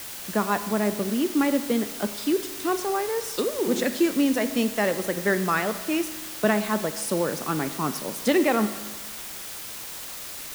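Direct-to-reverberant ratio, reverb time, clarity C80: 10.5 dB, 1.4 s, 13.5 dB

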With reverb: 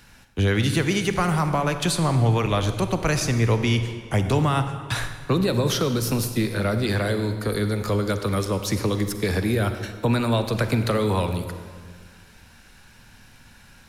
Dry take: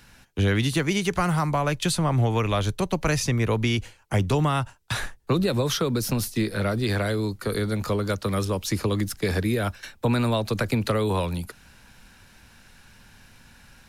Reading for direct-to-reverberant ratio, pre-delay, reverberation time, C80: 8.0 dB, 38 ms, 1.7 s, 9.5 dB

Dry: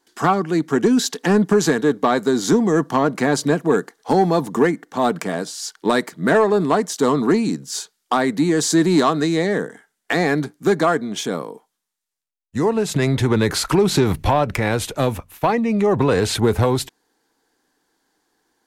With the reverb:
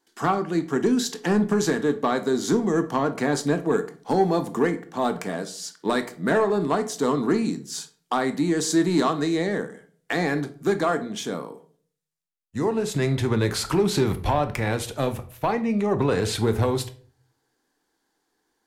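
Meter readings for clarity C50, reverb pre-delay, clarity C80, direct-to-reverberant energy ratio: 14.5 dB, 15 ms, 19.5 dB, 9.5 dB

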